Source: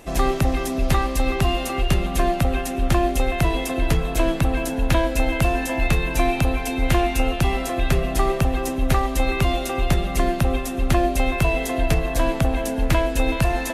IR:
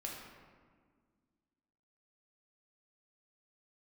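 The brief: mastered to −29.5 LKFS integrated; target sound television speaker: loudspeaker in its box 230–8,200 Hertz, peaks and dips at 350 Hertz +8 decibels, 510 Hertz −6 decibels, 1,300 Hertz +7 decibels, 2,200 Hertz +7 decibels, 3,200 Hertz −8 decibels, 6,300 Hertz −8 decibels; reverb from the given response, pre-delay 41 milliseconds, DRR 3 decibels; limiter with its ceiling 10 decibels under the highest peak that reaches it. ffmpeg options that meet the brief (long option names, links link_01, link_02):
-filter_complex "[0:a]alimiter=limit=-16.5dB:level=0:latency=1,asplit=2[link_01][link_02];[1:a]atrim=start_sample=2205,adelay=41[link_03];[link_02][link_03]afir=irnorm=-1:irlink=0,volume=-2.5dB[link_04];[link_01][link_04]amix=inputs=2:normalize=0,highpass=frequency=230:width=0.5412,highpass=frequency=230:width=1.3066,equalizer=frequency=350:width_type=q:width=4:gain=8,equalizer=frequency=510:width_type=q:width=4:gain=-6,equalizer=frequency=1300:width_type=q:width=4:gain=7,equalizer=frequency=2200:width_type=q:width=4:gain=7,equalizer=frequency=3200:width_type=q:width=4:gain=-8,equalizer=frequency=6300:width_type=q:width=4:gain=-8,lowpass=frequency=8200:width=0.5412,lowpass=frequency=8200:width=1.3066,volume=-4.5dB"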